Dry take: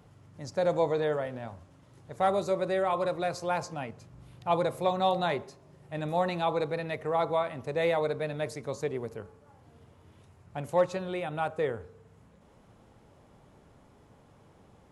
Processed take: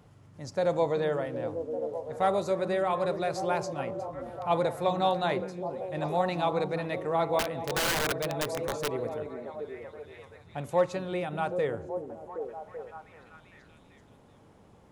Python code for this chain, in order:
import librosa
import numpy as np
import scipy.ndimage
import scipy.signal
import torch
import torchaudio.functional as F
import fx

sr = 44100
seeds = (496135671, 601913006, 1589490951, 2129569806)

y = fx.echo_stepped(x, sr, ms=385, hz=240.0, octaves=0.7, feedback_pct=70, wet_db=-3)
y = fx.overflow_wrap(y, sr, gain_db=23.0, at=(7.39, 8.96))